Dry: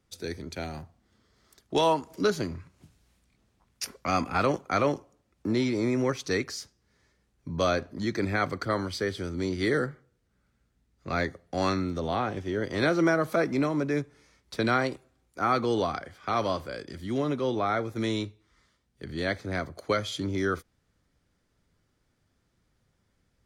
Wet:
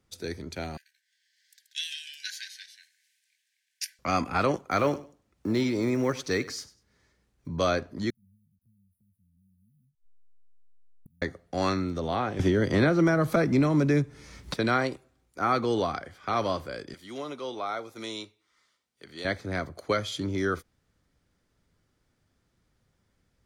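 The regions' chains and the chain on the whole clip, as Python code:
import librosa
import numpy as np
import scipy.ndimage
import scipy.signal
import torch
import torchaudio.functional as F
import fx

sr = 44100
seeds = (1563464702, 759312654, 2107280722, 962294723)

y = fx.chain(x, sr, fx.echo_pitch(ms=86, semitones=-1, count=2, db_per_echo=-6.0),
    fx.brickwall_highpass(low_hz=1500.0), at=(0.77, 3.99))
y = fx.chain(y, sr, fx.block_float(bits=7),
    fx.echo_feedback(ms=98, feedback_pct=22, wet_db=-18.0), at=(4.71, 7.49))
y = fx.chain(y, sr, fx.delta_hold(step_db=-43.5),
    fx.brickwall_bandstop(low_hz=240.0, high_hz=9300.0),
    fx.gate_flip(shuts_db=-39.0, range_db=-30), at=(8.1, 11.22))
y = fx.chain(y, sr, fx.bass_treble(bass_db=8, treble_db=0),
    fx.band_squash(depth_pct=100), at=(12.39, 14.54))
y = fx.chain(y, sr, fx.highpass(hz=950.0, slope=6),
    fx.notch(hz=1700.0, q=13.0),
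    fx.dynamic_eq(hz=1800.0, q=2.0, threshold_db=-49.0, ratio=4.0, max_db=-7), at=(16.94, 19.25))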